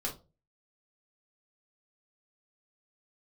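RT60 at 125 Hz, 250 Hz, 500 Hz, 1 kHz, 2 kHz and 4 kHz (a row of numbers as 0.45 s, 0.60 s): 0.50 s, 0.40 s, 0.35 s, 0.25 s, 0.20 s, 0.20 s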